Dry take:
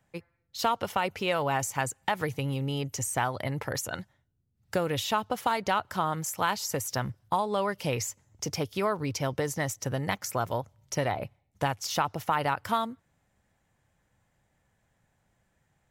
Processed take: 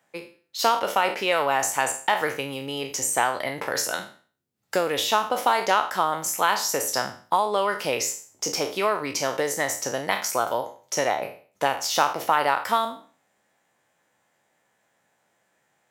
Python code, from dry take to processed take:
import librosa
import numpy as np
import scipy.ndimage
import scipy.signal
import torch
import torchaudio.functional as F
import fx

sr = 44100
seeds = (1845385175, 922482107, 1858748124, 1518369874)

y = fx.spec_trails(x, sr, decay_s=0.42)
y = scipy.signal.sosfilt(scipy.signal.butter(2, 340.0, 'highpass', fs=sr, output='sos'), y)
y = y * librosa.db_to_amplitude(5.0)